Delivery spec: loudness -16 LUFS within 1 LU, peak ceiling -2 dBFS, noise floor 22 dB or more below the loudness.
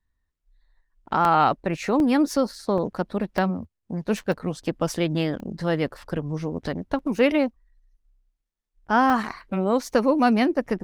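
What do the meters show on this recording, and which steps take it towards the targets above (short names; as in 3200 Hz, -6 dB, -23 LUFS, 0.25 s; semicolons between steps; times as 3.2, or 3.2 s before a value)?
dropouts 8; longest dropout 1.2 ms; loudness -24.0 LUFS; peak -7.0 dBFS; loudness target -16.0 LUFS
-> interpolate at 1.25/2/2.78/3.38/4.32/5.4/6.99/9.1, 1.2 ms; gain +8 dB; limiter -2 dBFS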